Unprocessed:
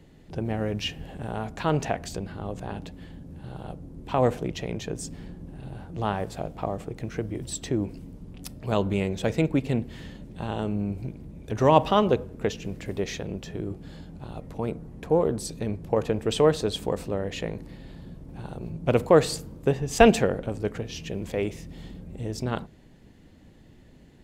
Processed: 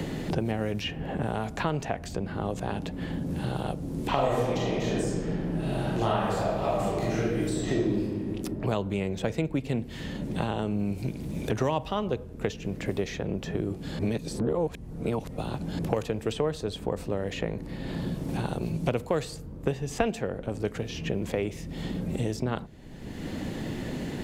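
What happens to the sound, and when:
0:04.08–0:08.02: thrown reverb, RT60 1.4 s, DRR −10 dB
0:13.99–0:15.79: reverse
whole clip: multiband upward and downward compressor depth 100%; level −4.5 dB

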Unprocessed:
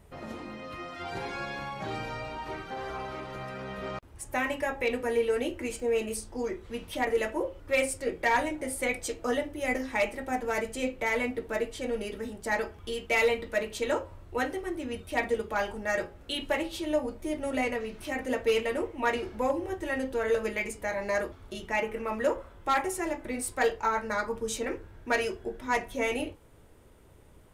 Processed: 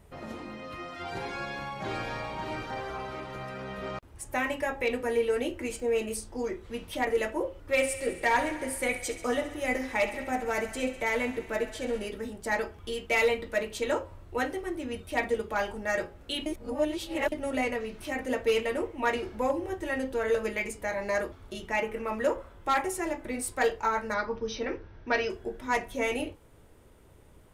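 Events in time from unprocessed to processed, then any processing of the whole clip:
0:01.27–0:02.23: delay throw 570 ms, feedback 15%, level −4 dB
0:07.64–0:12.09: feedback echo with a high-pass in the loop 67 ms, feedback 76%, level −12.5 dB
0:16.46–0:17.32: reverse
0:24.14–0:25.30: linear-phase brick-wall low-pass 6,200 Hz

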